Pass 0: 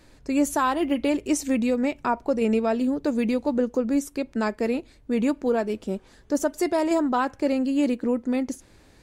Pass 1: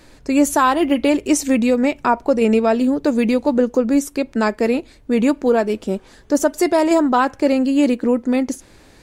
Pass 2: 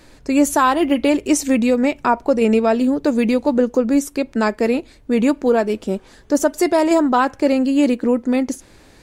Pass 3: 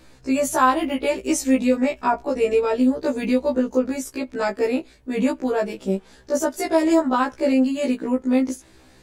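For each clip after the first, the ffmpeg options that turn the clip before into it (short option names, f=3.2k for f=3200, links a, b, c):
-af "equalizer=f=70:w=0.41:g=-3.5,volume=8dB"
-af anull
-af "afftfilt=real='re*1.73*eq(mod(b,3),0)':imag='im*1.73*eq(mod(b,3),0)':win_size=2048:overlap=0.75,volume=-1.5dB"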